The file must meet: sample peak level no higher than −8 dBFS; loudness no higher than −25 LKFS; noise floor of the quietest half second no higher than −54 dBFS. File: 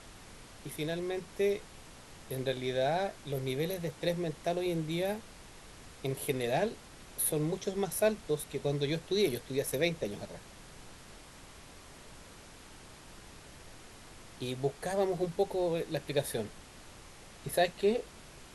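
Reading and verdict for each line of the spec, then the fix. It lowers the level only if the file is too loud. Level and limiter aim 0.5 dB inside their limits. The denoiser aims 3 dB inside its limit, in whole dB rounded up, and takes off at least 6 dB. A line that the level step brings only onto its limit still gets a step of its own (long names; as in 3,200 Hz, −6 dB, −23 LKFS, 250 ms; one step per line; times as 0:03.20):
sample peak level −16.5 dBFS: in spec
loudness −33.5 LKFS: in spec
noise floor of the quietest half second −52 dBFS: out of spec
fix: broadband denoise 6 dB, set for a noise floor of −52 dBFS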